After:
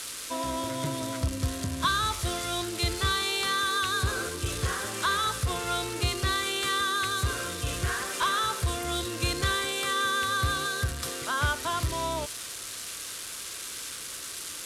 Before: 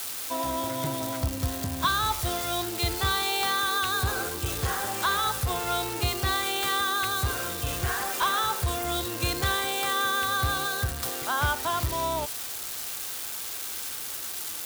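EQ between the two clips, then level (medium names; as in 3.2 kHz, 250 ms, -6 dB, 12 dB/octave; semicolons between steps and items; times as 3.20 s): low-pass 11 kHz 24 dB/octave; peaking EQ 800 Hz -14 dB 0.25 oct; 0.0 dB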